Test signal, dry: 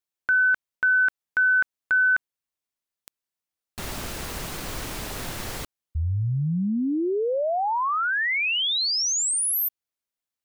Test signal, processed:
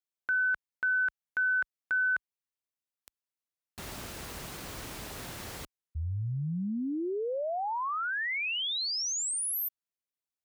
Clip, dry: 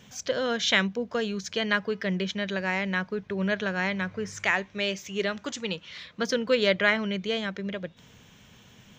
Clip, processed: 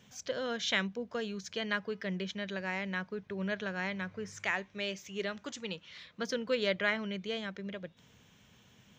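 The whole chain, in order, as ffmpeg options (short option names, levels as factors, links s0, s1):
-af "highpass=43,volume=0.398"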